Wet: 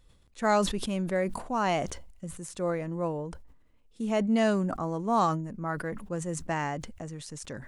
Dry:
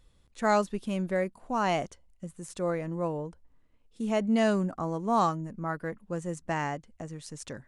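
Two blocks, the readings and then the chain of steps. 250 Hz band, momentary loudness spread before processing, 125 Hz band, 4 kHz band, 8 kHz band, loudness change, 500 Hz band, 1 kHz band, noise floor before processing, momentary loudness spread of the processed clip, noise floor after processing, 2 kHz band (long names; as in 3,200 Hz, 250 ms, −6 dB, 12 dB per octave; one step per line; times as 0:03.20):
+0.5 dB, 16 LU, +1.0 dB, +3.0 dB, +4.5 dB, 0.0 dB, +0.5 dB, 0.0 dB, −64 dBFS, 15 LU, −61 dBFS, +0.5 dB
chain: level that may fall only so fast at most 63 dB per second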